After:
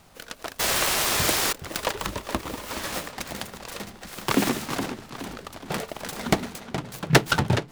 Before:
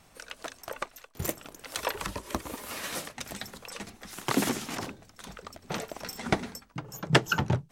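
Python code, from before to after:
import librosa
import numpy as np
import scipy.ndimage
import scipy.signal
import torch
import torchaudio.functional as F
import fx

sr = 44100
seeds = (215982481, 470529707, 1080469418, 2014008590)

y = fx.echo_wet_lowpass(x, sr, ms=420, feedback_pct=49, hz=3400.0, wet_db=-10.0)
y = fx.spec_paint(y, sr, seeds[0], shape='noise', start_s=0.59, length_s=0.94, low_hz=340.0, high_hz=10000.0, level_db=-28.0)
y = fx.noise_mod_delay(y, sr, seeds[1], noise_hz=1900.0, depth_ms=0.07)
y = F.gain(torch.from_numpy(y), 4.5).numpy()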